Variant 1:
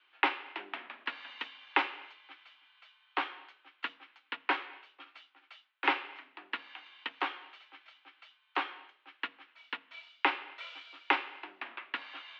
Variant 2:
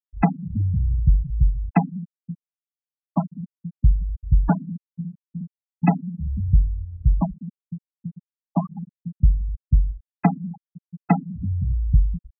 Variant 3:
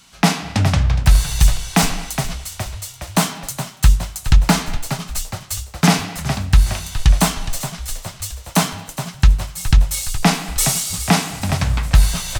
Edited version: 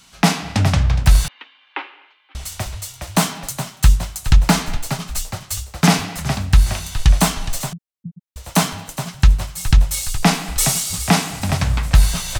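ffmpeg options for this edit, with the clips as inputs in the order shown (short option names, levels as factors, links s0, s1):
-filter_complex "[2:a]asplit=3[s0][s1][s2];[s0]atrim=end=1.282[s3];[0:a]atrim=start=1.278:end=2.352[s4];[s1]atrim=start=2.348:end=7.732[s5];[1:a]atrim=start=7.728:end=8.362[s6];[s2]atrim=start=8.358[s7];[s3][s4]acrossfade=d=0.004:c1=hsin:c2=hsin[s8];[s8][s5]acrossfade=d=0.004:c1=hsin:c2=hsin[s9];[s9][s6]acrossfade=d=0.004:c1=hsin:c2=hsin[s10];[s10][s7]acrossfade=d=0.004:c1=hsin:c2=hsin"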